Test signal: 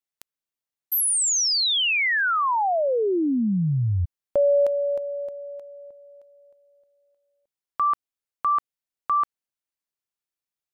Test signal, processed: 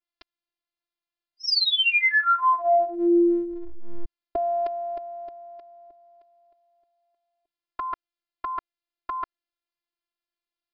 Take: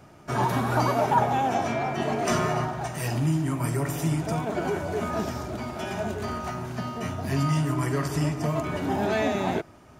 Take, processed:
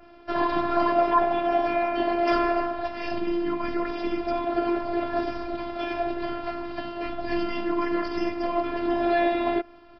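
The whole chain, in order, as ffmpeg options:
-af "aresample=11025,aresample=44100,adynamicequalizer=threshold=0.00251:dfrequency=3900:dqfactor=3.1:tfrequency=3900:tqfactor=3.1:attack=5:release=100:ratio=0.375:range=3:mode=cutabove:tftype=bell,afftfilt=real='hypot(re,im)*cos(PI*b)':imag='0':win_size=512:overlap=0.75,acontrast=38"

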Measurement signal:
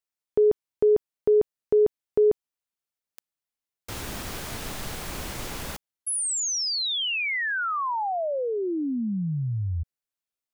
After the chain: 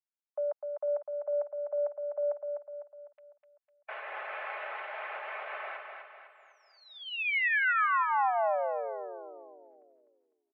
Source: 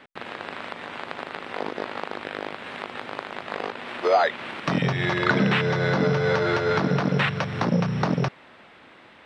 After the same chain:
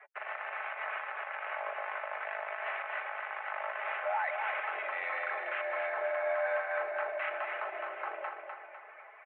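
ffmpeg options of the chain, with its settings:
-filter_complex "[0:a]afftdn=nr=15:nf=-46,equalizer=f=800:t=o:w=0.21:g=-7.5,aecho=1:1:4.4:0.47,areverse,acompressor=threshold=0.0316:ratio=8:attack=23:release=32:knee=1:detection=rms,areverse,alimiter=level_in=1.26:limit=0.0631:level=0:latency=1:release=138,volume=0.794,acontrast=62,asplit=2[s0][s1];[s1]aecho=0:1:251|502|753|1004|1255|1506:0.531|0.25|0.117|0.0551|0.0259|0.0122[s2];[s0][s2]amix=inputs=2:normalize=0,highpass=f=440:t=q:w=0.5412,highpass=f=440:t=q:w=1.307,lowpass=f=2300:t=q:w=0.5176,lowpass=f=2300:t=q:w=0.7071,lowpass=f=2300:t=q:w=1.932,afreqshift=160,volume=0.668" -ar 24000 -c:a libmp3lame -b:a 56k

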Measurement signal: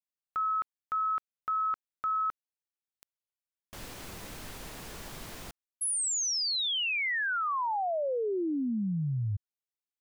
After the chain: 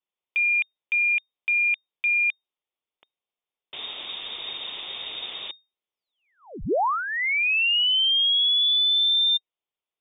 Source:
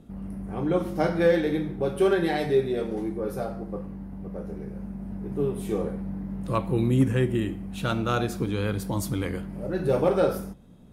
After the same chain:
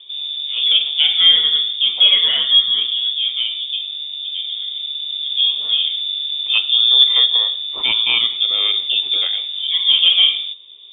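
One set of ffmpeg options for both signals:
-af "acontrast=85,lowpass=f=3100:t=q:w=0.5098,lowpass=f=3100:t=q:w=0.6013,lowpass=f=3100:t=q:w=0.9,lowpass=f=3100:t=q:w=2.563,afreqshift=-3700,equalizer=f=100:t=o:w=0.67:g=-4,equalizer=f=400:t=o:w=0.67:g=5,equalizer=f=1600:t=o:w=0.67:g=-11,volume=1.5"

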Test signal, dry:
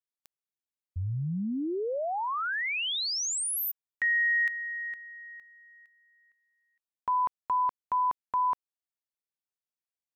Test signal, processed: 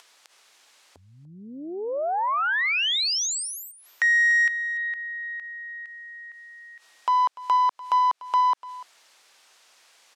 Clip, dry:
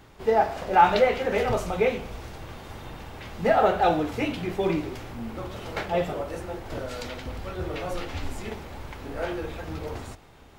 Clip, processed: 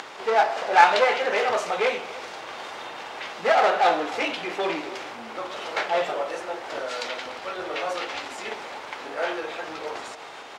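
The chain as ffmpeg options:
-filter_complex "[0:a]acompressor=mode=upward:threshold=0.0178:ratio=2.5:attack=15:release=83:knee=2.83:detection=peak,aeval=exprs='clip(val(0),-1,0.0596)':c=same,aeval=exprs='0.501*(cos(1*acos(clip(val(0)/0.501,-1,1)))-cos(1*PI/2))+0.0316*(cos(6*acos(clip(val(0)/0.501,-1,1)))-cos(6*PI/2))+0.00282*(cos(7*acos(clip(val(0)/0.501,-1,1)))-cos(7*PI/2))':c=same,highpass=590,lowpass=6600,asplit=2[s0][s1];[s1]aecho=0:1:294:0.126[s2];[s0][s2]amix=inputs=2:normalize=0,volume=2.37"

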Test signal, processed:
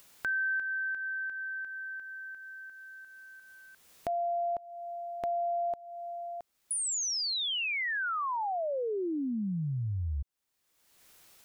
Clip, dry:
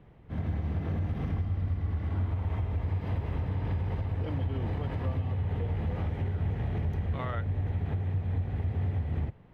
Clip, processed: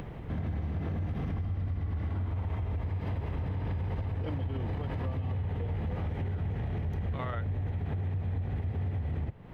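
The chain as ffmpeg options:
-filter_complex "[0:a]asplit=2[s0][s1];[s1]acompressor=mode=upward:threshold=0.02:ratio=2.5,volume=1.26[s2];[s0][s2]amix=inputs=2:normalize=0,alimiter=limit=0.106:level=0:latency=1:release=43,acompressor=threshold=0.0178:ratio=2"

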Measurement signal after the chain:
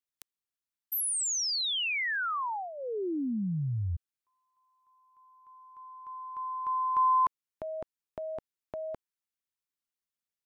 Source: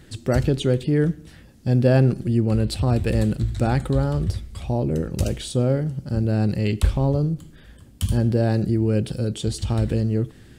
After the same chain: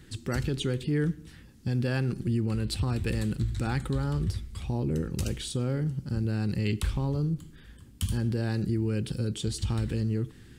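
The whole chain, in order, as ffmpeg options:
-filter_complex "[0:a]equalizer=f=630:t=o:w=0.51:g=-12,acrossover=split=810[s0][s1];[s0]alimiter=limit=0.141:level=0:latency=1:release=106[s2];[s2][s1]amix=inputs=2:normalize=0,volume=0.668"

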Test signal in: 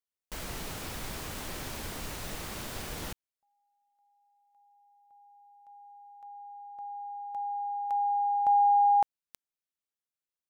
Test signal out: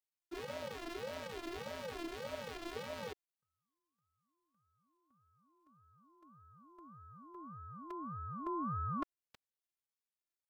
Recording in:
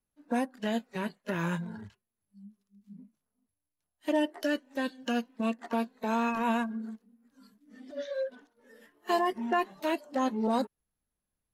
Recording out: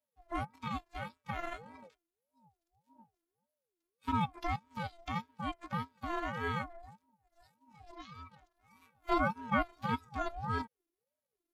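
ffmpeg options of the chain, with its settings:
-filter_complex "[0:a]acrossover=split=4700[s0][s1];[s1]acompressor=threshold=0.00112:ratio=4:attack=1:release=60[s2];[s0][s2]amix=inputs=2:normalize=0,afftfilt=real='hypot(re,im)*cos(PI*b)':imag='0':win_size=512:overlap=0.75,aeval=exprs='val(0)*sin(2*PI*470*n/s+470*0.3/1.7*sin(2*PI*1.7*n/s))':c=same,volume=1.12"

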